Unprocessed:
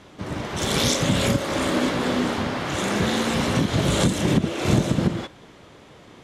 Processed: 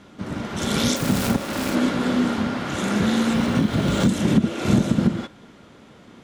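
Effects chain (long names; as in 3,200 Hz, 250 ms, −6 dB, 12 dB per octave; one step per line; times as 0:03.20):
0:00.96–0:01.75: phase distortion by the signal itself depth 0.79 ms
hollow resonant body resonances 220/1,400 Hz, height 9 dB, ringing for 40 ms
0:03.33–0:04.09: linearly interpolated sample-rate reduction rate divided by 3×
level −2.5 dB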